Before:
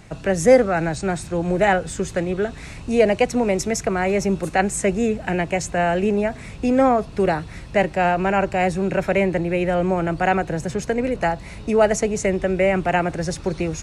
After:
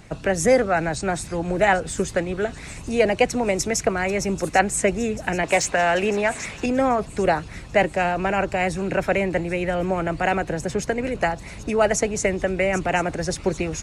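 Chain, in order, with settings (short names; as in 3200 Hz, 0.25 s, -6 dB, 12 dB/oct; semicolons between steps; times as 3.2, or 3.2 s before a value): thin delay 0.788 s, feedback 58%, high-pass 4100 Hz, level -11.5 dB; harmonic-percussive split harmonic -7 dB; 5.43–6.66 overdrive pedal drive 13 dB, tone 5200 Hz, clips at -11 dBFS; gain +2.5 dB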